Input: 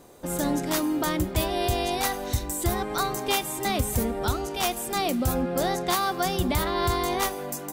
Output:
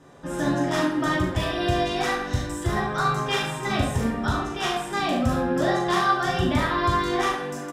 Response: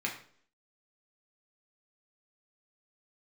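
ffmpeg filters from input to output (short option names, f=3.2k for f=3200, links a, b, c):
-filter_complex "[0:a]lowpass=6.4k,aecho=1:1:40|71:0.596|0.355[a];[1:a]atrim=start_sample=2205,asetrate=32634,aresample=44100[b];[a][b]afir=irnorm=-1:irlink=0,volume=-4dB"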